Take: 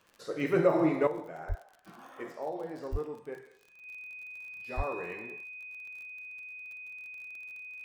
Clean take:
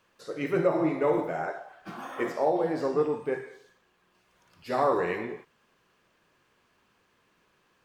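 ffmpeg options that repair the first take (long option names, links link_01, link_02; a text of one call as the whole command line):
ffmpeg -i in.wav -filter_complex "[0:a]adeclick=threshold=4,bandreject=frequency=2500:width=30,asplit=3[link_01][link_02][link_03];[link_01]afade=type=out:start_time=1.48:duration=0.02[link_04];[link_02]highpass=frequency=140:width=0.5412,highpass=frequency=140:width=1.3066,afade=type=in:start_time=1.48:duration=0.02,afade=type=out:start_time=1.6:duration=0.02[link_05];[link_03]afade=type=in:start_time=1.6:duration=0.02[link_06];[link_04][link_05][link_06]amix=inputs=3:normalize=0,asplit=3[link_07][link_08][link_09];[link_07]afade=type=out:start_time=2.91:duration=0.02[link_10];[link_08]highpass=frequency=140:width=0.5412,highpass=frequency=140:width=1.3066,afade=type=in:start_time=2.91:duration=0.02,afade=type=out:start_time=3.03:duration=0.02[link_11];[link_09]afade=type=in:start_time=3.03:duration=0.02[link_12];[link_10][link_11][link_12]amix=inputs=3:normalize=0,asplit=3[link_13][link_14][link_15];[link_13]afade=type=out:start_time=4.76:duration=0.02[link_16];[link_14]highpass=frequency=140:width=0.5412,highpass=frequency=140:width=1.3066,afade=type=in:start_time=4.76:duration=0.02,afade=type=out:start_time=4.88:duration=0.02[link_17];[link_15]afade=type=in:start_time=4.88:duration=0.02[link_18];[link_16][link_17][link_18]amix=inputs=3:normalize=0,asetnsamples=nb_out_samples=441:pad=0,asendcmd='1.07 volume volume 11.5dB',volume=0dB" out.wav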